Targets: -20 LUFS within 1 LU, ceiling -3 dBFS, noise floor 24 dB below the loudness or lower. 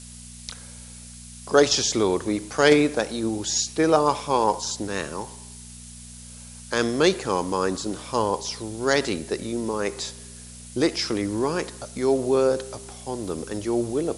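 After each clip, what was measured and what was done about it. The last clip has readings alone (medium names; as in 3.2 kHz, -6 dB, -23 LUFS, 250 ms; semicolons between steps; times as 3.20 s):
hum 60 Hz; highest harmonic 240 Hz; hum level -42 dBFS; noise floor -42 dBFS; noise floor target -48 dBFS; loudness -24.0 LUFS; peak level -3.0 dBFS; loudness target -20.0 LUFS
-> de-hum 60 Hz, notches 4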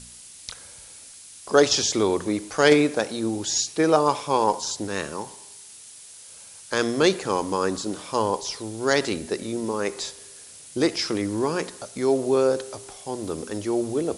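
hum not found; noise floor -45 dBFS; noise floor target -48 dBFS
-> noise print and reduce 6 dB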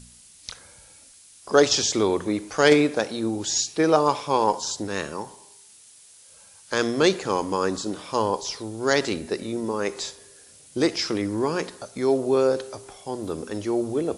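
noise floor -51 dBFS; loudness -24.0 LUFS; peak level -2.5 dBFS; loudness target -20.0 LUFS
-> trim +4 dB; peak limiter -3 dBFS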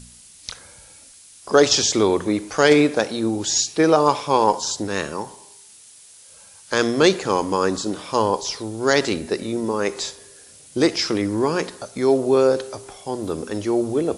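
loudness -20.5 LUFS; peak level -3.0 dBFS; noise floor -47 dBFS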